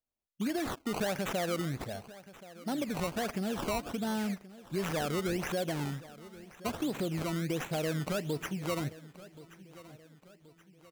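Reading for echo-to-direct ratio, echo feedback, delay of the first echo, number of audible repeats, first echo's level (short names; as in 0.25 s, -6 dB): -17.0 dB, 46%, 1.077 s, 3, -18.0 dB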